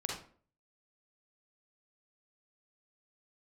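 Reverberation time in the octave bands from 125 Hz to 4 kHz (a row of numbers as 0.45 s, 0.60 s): 0.55 s, 0.50 s, 0.50 s, 0.45 s, 0.40 s, 0.30 s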